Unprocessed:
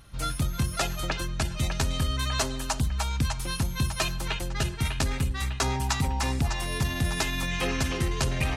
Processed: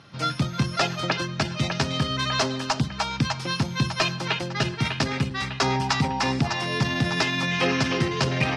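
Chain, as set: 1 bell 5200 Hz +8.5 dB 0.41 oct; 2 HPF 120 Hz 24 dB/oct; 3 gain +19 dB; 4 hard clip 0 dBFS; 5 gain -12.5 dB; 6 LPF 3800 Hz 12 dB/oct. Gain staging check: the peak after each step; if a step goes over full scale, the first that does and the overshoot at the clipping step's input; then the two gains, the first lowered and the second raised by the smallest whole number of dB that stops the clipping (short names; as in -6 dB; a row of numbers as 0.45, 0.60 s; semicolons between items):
-10.0, -10.0, +9.0, 0.0, -12.5, -12.0 dBFS; step 3, 9.0 dB; step 3 +10 dB, step 5 -3.5 dB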